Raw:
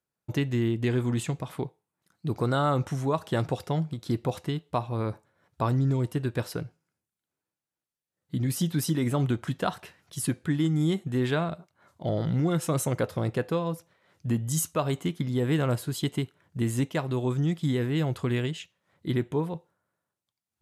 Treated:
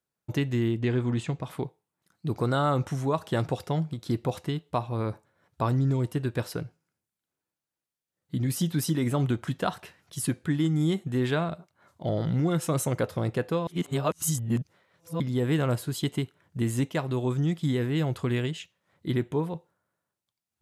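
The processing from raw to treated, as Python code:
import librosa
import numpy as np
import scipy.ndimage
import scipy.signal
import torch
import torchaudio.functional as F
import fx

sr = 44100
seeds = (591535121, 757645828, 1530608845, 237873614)

y = fx.air_absorb(x, sr, metres=84.0, at=(0.79, 1.43))
y = fx.edit(y, sr, fx.reverse_span(start_s=13.67, length_s=1.53), tone=tone)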